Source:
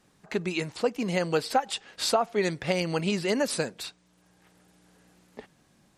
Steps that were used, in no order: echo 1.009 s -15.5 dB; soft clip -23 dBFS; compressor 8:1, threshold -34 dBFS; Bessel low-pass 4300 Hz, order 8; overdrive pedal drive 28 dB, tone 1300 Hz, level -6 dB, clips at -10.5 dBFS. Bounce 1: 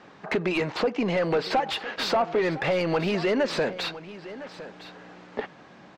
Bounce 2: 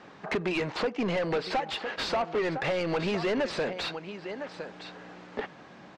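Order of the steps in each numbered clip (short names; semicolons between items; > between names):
soft clip > Bessel low-pass > compressor > overdrive pedal > echo; compressor > echo > overdrive pedal > Bessel low-pass > soft clip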